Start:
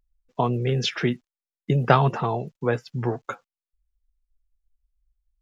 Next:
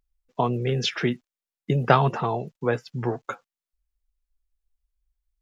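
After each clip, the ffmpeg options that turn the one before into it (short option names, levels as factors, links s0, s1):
-af "lowshelf=f=110:g=-5"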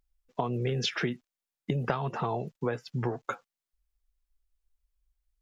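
-af "acompressor=threshold=0.0501:ratio=10"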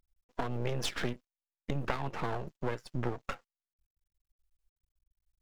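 -af "aeval=exprs='max(val(0),0)':c=same"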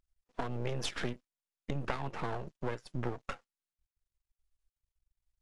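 -af "volume=0.794" -ar 24000 -c:a aac -b:a 96k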